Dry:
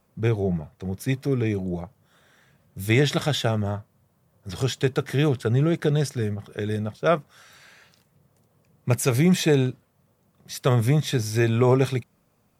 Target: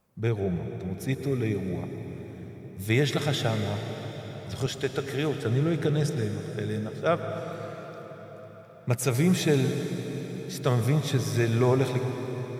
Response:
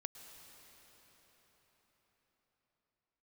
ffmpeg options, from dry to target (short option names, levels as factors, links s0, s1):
-filter_complex "[0:a]asettb=1/sr,asplit=3[s0][s1][s2];[s0]atrim=end=4.664[s3];[s1]atrim=start=4.66:end=5.39,asetpts=PTS-STARTPTS,afade=t=in:d=0.004:c=qsin,afade=t=out:st=0.726:d=0.004:c=qsin,highpass=f=220:p=1[s4];[s2]atrim=start=5.386[s5];[s3][s4]acrossfade=d=0.004:c1=hsin:c2=qsin[s6];[s6][s5]acrossfade=d=0.004:c1=qsin:c2=hsin[s7];[1:a]atrim=start_sample=2205[s8];[s7][s8]afir=irnorm=-1:irlink=0"